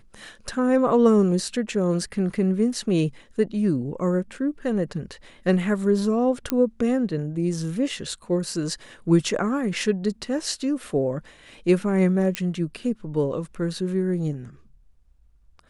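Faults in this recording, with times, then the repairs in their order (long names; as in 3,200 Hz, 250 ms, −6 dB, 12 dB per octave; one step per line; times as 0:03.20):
0:06.50: click −8 dBFS
0:12.35: click −9 dBFS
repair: click removal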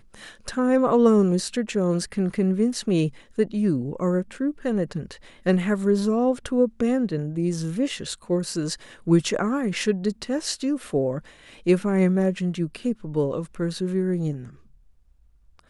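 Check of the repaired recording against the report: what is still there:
0:12.35: click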